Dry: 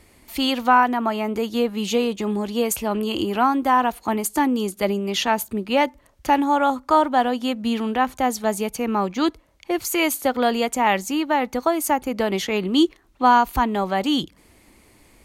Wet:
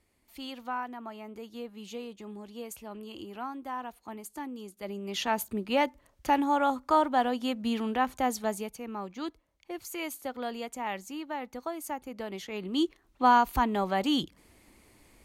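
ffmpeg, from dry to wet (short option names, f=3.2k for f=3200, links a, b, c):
-af "volume=2.5dB,afade=t=in:st=4.8:d=0.61:silence=0.251189,afade=t=out:st=8.37:d=0.41:silence=0.375837,afade=t=in:st=12.48:d=0.8:silence=0.334965"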